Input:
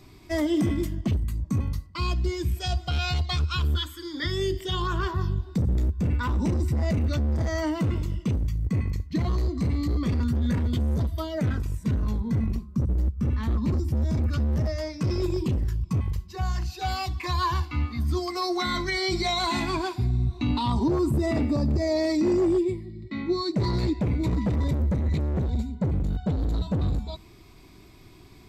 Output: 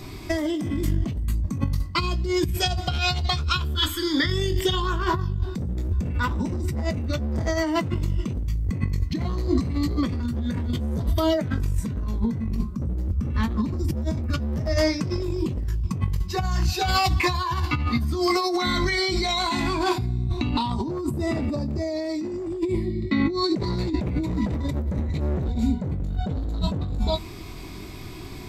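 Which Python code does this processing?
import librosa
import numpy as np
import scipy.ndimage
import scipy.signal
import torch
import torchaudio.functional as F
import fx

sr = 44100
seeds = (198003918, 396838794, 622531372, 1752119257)

y = fx.doubler(x, sr, ms=22.0, db=-8)
y = fx.over_compress(y, sr, threshold_db=-31.0, ratio=-1.0)
y = F.gain(torch.from_numpy(y), 6.5).numpy()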